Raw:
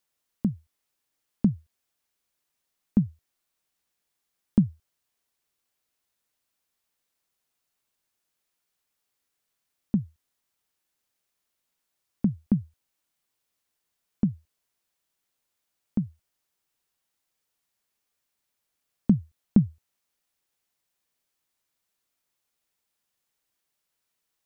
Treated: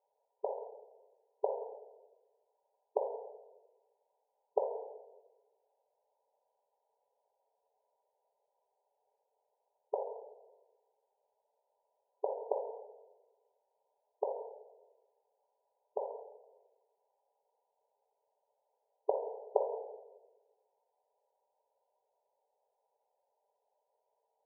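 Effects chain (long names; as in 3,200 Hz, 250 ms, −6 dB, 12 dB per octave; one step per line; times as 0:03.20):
in parallel at −9 dB: comparator with hysteresis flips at −36 dBFS
on the sum: linear-phase brick-wall band-pass 410–1,000 Hz
rectangular room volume 680 cubic metres, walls mixed, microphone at 1.2 metres
level +12.5 dB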